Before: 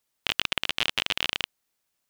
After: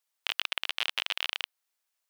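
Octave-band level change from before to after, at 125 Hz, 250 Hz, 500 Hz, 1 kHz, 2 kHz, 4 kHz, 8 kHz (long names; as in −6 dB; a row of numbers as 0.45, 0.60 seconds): below −30 dB, below −15 dB, −9.0 dB, −4.5 dB, −4.0 dB, −4.0 dB, −6.5 dB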